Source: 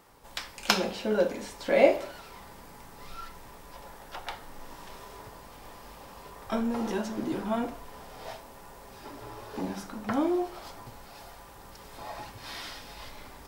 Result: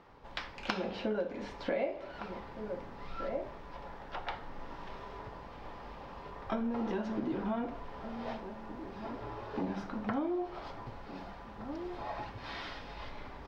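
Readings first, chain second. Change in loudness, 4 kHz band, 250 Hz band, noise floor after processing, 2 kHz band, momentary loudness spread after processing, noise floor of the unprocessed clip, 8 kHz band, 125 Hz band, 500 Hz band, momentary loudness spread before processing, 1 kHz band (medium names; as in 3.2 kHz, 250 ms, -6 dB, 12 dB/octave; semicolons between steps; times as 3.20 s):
-9.0 dB, -10.0 dB, -4.0 dB, -49 dBFS, -6.5 dB, 12 LU, -49 dBFS, under -15 dB, -1.5 dB, -8.0 dB, 21 LU, -4.0 dB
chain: distance through air 250 m; echo from a far wall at 260 m, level -15 dB; compression 8:1, threshold -32 dBFS, peak gain reduction 17.5 dB; trim +1.5 dB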